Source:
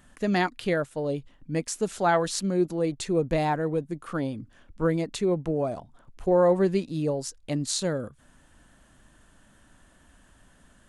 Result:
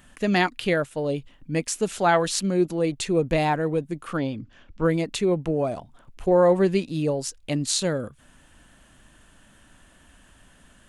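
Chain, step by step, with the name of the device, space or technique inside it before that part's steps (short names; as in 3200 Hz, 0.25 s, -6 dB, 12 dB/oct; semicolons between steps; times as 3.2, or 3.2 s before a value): 4.17–4.84 LPF 6500 Hz 24 dB/oct; presence and air boost (bell 2700 Hz +5.5 dB 0.82 oct; high shelf 9700 Hz +4 dB); gain +2.5 dB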